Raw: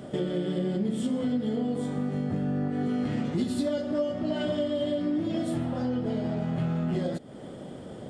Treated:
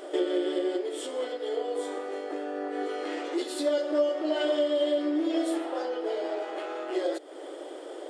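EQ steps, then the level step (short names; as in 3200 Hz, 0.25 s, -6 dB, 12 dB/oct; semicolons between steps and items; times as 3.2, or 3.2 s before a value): brick-wall FIR high-pass 290 Hz; +4.0 dB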